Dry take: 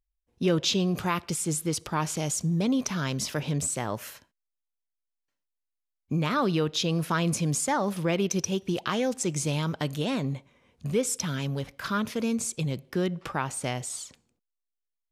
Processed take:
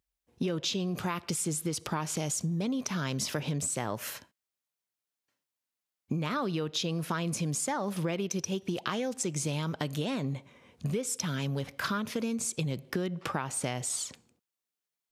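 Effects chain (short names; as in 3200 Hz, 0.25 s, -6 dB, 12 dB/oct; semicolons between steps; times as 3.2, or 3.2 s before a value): compressor 10:1, threshold -34 dBFS, peak gain reduction 14.5 dB; HPF 82 Hz; gain +5.5 dB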